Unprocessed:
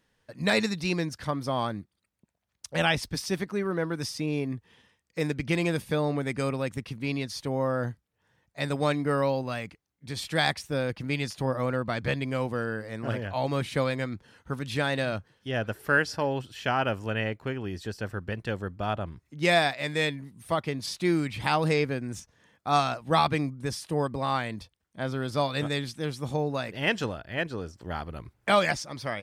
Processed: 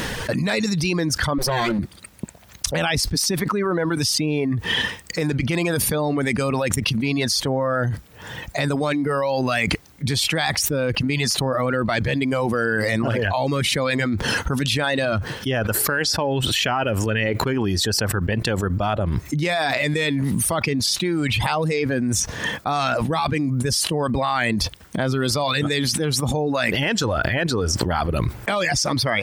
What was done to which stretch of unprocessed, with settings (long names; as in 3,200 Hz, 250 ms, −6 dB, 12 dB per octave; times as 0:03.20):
0:01.38–0:01.79: lower of the sound and its delayed copy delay 5.6 ms
whole clip: reverb reduction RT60 1.6 s; boost into a limiter +21.5 dB; envelope flattener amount 100%; level −16 dB